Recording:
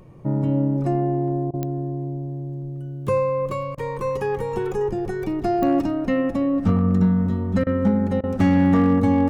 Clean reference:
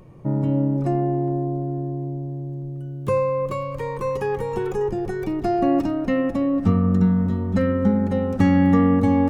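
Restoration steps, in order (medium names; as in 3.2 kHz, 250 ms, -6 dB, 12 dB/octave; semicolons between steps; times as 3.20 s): clip repair -11 dBFS; de-click; interpolate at 1.51/3.75/7.64/8.21 s, 25 ms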